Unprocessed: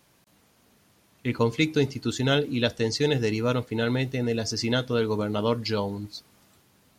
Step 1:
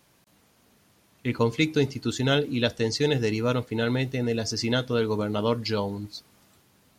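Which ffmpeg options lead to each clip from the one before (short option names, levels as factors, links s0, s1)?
-af anull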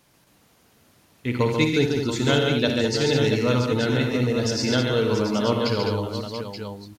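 -af "aecho=1:1:57|89|138|206|681|879:0.355|0.299|0.596|0.422|0.316|0.355,volume=1.12"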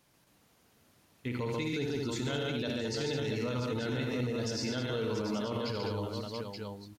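-af "alimiter=limit=0.126:level=0:latency=1:release=32,volume=0.422"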